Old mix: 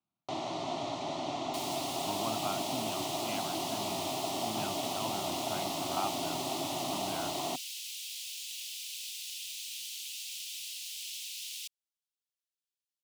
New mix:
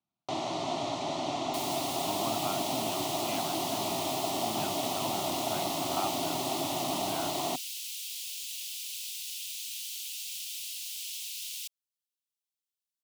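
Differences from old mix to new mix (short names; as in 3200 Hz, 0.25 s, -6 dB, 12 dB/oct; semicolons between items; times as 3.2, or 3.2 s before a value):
first sound +3.0 dB; master: add high shelf 9800 Hz +7.5 dB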